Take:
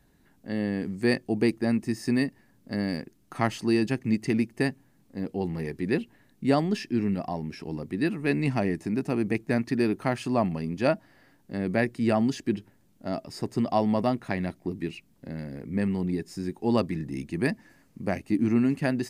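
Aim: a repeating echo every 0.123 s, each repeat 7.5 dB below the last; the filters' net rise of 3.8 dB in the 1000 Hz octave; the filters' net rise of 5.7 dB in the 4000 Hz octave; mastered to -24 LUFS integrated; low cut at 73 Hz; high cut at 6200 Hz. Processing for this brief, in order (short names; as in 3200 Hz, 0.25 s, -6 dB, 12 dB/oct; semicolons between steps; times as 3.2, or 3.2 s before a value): HPF 73 Hz; LPF 6200 Hz; bell 1000 Hz +5 dB; bell 4000 Hz +8 dB; feedback echo 0.123 s, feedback 42%, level -7.5 dB; gain +2.5 dB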